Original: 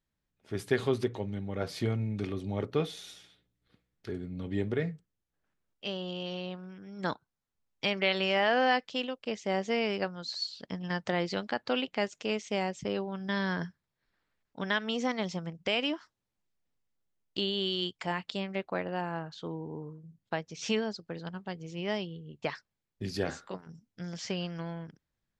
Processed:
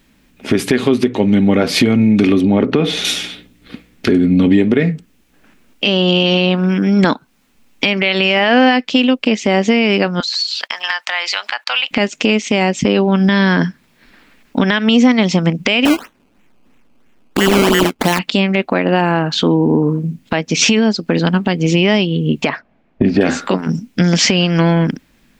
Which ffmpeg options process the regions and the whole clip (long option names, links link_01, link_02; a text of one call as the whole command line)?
ffmpeg -i in.wav -filter_complex "[0:a]asettb=1/sr,asplit=3[link_01][link_02][link_03];[link_01]atrim=end=2.414[link_04];[link_02]atrim=start=2.41:end=3.05,asetpts=PTS-STARTPTS,afade=type=in:duration=0.004:curve=qsin,afade=type=out:start_time=0.636:duration=0.004:curve=qsin,lowpass=frequency=2100:poles=1,acompressor=threshold=-34dB:ratio=4:attack=3.2:release=140:knee=1:detection=peak[link_05];[link_03]atrim=start=3.046[link_06];[link_04][link_05]acrossfade=duration=0.004:curve1=hsin:curve2=qsin[link_07];[link_07][link_06]acrossfade=duration=0.004:curve1=qsin:curve2=hsin,asettb=1/sr,asplit=3[link_08][link_09][link_10];[link_08]atrim=end=10.204[link_11];[link_09]atrim=start=10.2:end=11.91,asetpts=PTS-STARTPTS,afade=type=in:duration=0.004:curve=qsin,afade=type=out:start_time=1.706:duration=0.004:curve=qsin,agate=range=-22dB:threshold=-53dB:ratio=16:release=100:detection=peak,highpass=frequency=880:width=0.5412,highpass=frequency=880:width=1.3066,acompressor=threshold=-47dB:ratio=6:attack=3.2:release=140:knee=1:detection=peak[link_12];[link_10]atrim=start=11.906[link_13];[link_11][link_12]acrossfade=duration=0.004:curve1=hsin:curve2=qsin[link_14];[link_14][link_13]acrossfade=duration=0.004:curve1=qsin:curve2=hsin,asettb=1/sr,asplit=3[link_15][link_16][link_17];[link_15]atrim=end=15.854[link_18];[link_16]atrim=start=15.85:end=18.19,asetpts=PTS-STARTPTS,afade=type=in:duration=0.004:curve=qsin,afade=type=out:start_time=2.336:duration=0.004:curve=qsin,lowpass=frequency=7700:width=0.5412,lowpass=frequency=7700:width=1.3066,acrusher=samples=17:mix=1:aa=0.000001:lfo=1:lforange=17:lforate=3[link_19];[link_17]atrim=start=18.186[link_20];[link_18][link_19]acrossfade=duration=0.004:curve1=hsin:curve2=qsin[link_21];[link_21][link_20]acrossfade=duration=0.004:curve1=qsin:curve2=hsin,asettb=1/sr,asplit=3[link_22][link_23][link_24];[link_22]atrim=end=22.494[link_25];[link_23]atrim=start=22.49:end=23.21,asetpts=PTS-STARTPTS,afade=type=in:duration=0.004:curve=qsin,afade=type=out:start_time=0.716:duration=0.004:curve=qsin,lowpass=1600,equalizer=frequency=670:width_type=o:width=0.37:gain=11.5[link_26];[link_24]atrim=start=23.206[link_27];[link_25][link_26]acrossfade=duration=0.004:curve1=hsin:curve2=qsin[link_28];[link_28][link_27]acrossfade=duration=0.004:curve1=qsin:curve2=hsin,equalizer=frequency=100:width_type=o:width=0.67:gain=-9,equalizer=frequency=250:width_type=o:width=0.67:gain=11,equalizer=frequency=2500:width_type=o:width=0.67:gain=7,acompressor=threshold=-38dB:ratio=6,alimiter=level_in=30.5dB:limit=-1dB:release=50:level=0:latency=1,volume=-1dB" out.wav